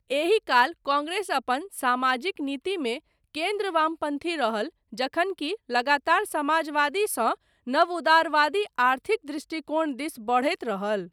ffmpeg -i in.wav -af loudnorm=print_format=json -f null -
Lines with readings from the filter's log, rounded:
"input_i" : "-25.6",
"input_tp" : "-8.2",
"input_lra" : "2.7",
"input_thresh" : "-35.6",